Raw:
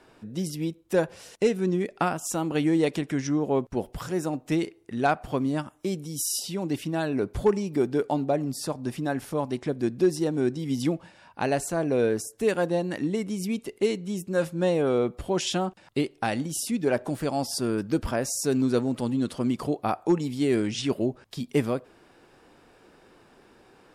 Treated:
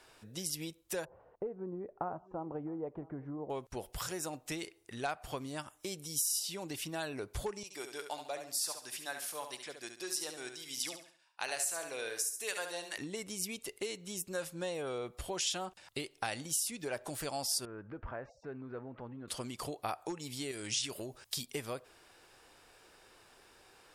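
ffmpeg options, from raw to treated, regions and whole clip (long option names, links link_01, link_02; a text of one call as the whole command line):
ffmpeg -i in.wav -filter_complex "[0:a]asettb=1/sr,asplit=3[link_01][link_02][link_03];[link_01]atrim=end=1.054[link_04];[link_02]atrim=start=1.05:end=3.5,asetpts=PTS-STARTPTS,afade=type=in:duration=0.004:curve=qsin,afade=type=out:start_time=2.446:duration=0.004:curve=qsin,lowpass=frequency=1000:width=0.5412,lowpass=frequency=1000:width=1.3066,aecho=1:1:659:0.0668,atrim=end_sample=108045[link_05];[link_03]atrim=start=3.496[link_06];[link_04][link_05]acrossfade=duration=0.004:curve1=hsin:curve2=qsin[link_07];[link_07][link_06]acrossfade=duration=0.004:curve1=qsin:curve2=hsin,asettb=1/sr,asplit=3[link_08][link_09][link_10];[link_08]atrim=end=7.634[link_11];[link_09]atrim=start=7.63:end=12.98,asetpts=PTS-STARTPTS,afade=type=in:duration=0.004:curve=qsin,afade=type=out:start_time=5.346:duration=0.004:curve=qsin,highpass=frequency=1500:poles=1,agate=range=-33dB:threshold=-48dB:ratio=3:release=100:detection=peak,aecho=1:1:70|140|210|280:0.398|0.139|0.0488|0.0171,atrim=end_sample=235935[link_12];[link_10]atrim=start=12.976[link_13];[link_11][link_12]acrossfade=duration=0.004:curve1=hsin:curve2=qsin[link_14];[link_14][link_13]acrossfade=duration=0.004:curve1=qsin:curve2=hsin,asettb=1/sr,asplit=3[link_15][link_16][link_17];[link_15]atrim=end=17.654[link_18];[link_16]atrim=start=17.65:end=19.28,asetpts=PTS-STARTPTS,afade=type=in:duration=0.004:curve=qsin,afade=type=out:start_time=1.626:duration=0.004:curve=qsin,lowpass=frequency=1800:width=0.5412,lowpass=frequency=1800:width=1.3066,acompressor=threshold=-36dB:ratio=2:attack=3.2:release=140:knee=1:detection=peak[link_19];[link_17]atrim=start=19.276[link_20];[link_18][link_19]acrossfade=duration=0.004:curve1=hsin:curve2=qsin[link_21];[link_21][link_20]acrossfade=duration=0.004:curve1=qsin:curve2=hsin,asettb=1/sr,asplit=3[link_22][link_23][link_24];[link_22]atrim=end=20.514[link_25];[link_23]atrim=start=20.51:end=21.46,asetpts=PTS-STARTPTS,afade=type=in:duration=0.004:curve=qsin,afade=type=out:start_time=0.946:duration=0.004:curve=qsin,highshelf=frequency=4600:gain=8.5,acompressor=threshold=-27dB:ratio=3:attack=3.2:release=140:knee=1:detection=peak[link_26];[link_24]atrim=start=21.456[link_27];[link_25][link_26]acrossfade=duration=0.004:curve1=hsin:curve2=qsin[link_28];[link_28][link_27]acrossfade=duration=0.004:curve1=qsin:curve2=hsin,highshelf=frequency=3200:gain=10.5,acompressor=threshold=-26dB:ratio=6,equalizer=frequency=220:width_type=o:width=1.6:gain=-11,volume=-4.5dB" out.wav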